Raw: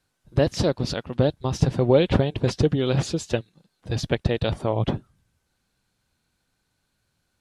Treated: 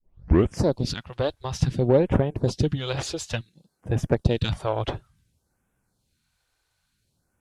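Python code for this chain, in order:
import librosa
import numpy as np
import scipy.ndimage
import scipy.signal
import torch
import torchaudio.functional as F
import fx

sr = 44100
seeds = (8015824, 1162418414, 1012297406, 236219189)

y = fx.tape_start_head(x, sr, length_s=0.59)
y = fx.rider(y, sr, range_db=10, speed_s=2.0)
y = fx.phaser_stages(y, sr, stages=2, low_hz=180.0, high_hz=4400.0, hz=0.57, feedback_pct=5)
y = fx.cheby_harmonics(y, sr, harmonics=(8,), levels_db=(-30,), full_scale_db=-5.0)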